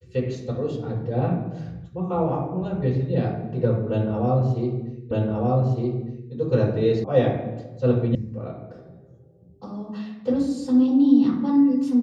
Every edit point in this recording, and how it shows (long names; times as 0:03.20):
0:05.11: the same again, the last 1.21 s
0:07.04: cut off before it has died away
0:08.15: cut off before it has died away